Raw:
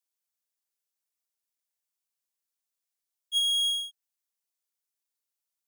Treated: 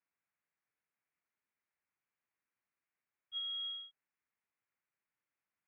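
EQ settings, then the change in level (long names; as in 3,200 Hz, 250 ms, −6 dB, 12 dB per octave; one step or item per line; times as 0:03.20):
high-pass filter 96 Hz
Butterworth low-pass 2,400 Hz 48 dB per octave
parametric band 550 Hz −7.5 dB 2.1 octaves
+9.0 dB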